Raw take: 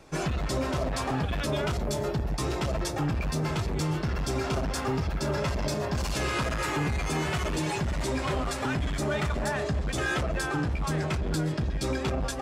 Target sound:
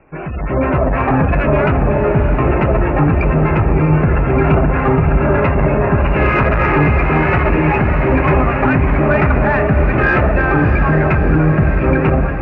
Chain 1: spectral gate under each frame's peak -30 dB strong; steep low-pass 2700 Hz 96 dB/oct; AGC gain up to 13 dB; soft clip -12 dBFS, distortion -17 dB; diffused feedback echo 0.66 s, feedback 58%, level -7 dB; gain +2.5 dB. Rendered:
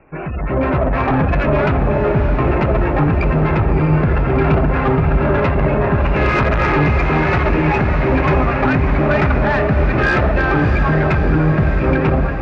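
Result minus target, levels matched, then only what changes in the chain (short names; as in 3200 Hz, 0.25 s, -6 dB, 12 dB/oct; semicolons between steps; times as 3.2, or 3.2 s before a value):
soft clip: distortion +13 dB
change: soft clip -4 dBFS, distortion -29 dB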